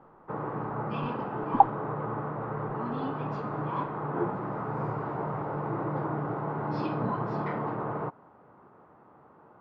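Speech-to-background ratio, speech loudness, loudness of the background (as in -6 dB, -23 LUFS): 7.0 dB, -26.0 LUFS, -33.0 LUFS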